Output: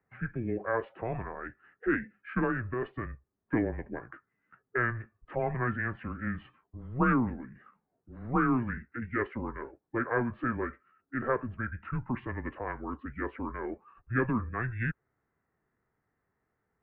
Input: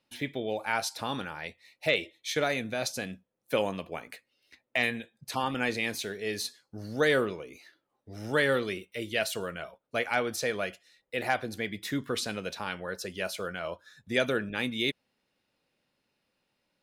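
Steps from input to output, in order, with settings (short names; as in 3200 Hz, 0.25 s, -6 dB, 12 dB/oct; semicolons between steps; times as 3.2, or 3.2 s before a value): mistuned SSB -120 Hz 160–2600 Hz; formant shift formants -5 st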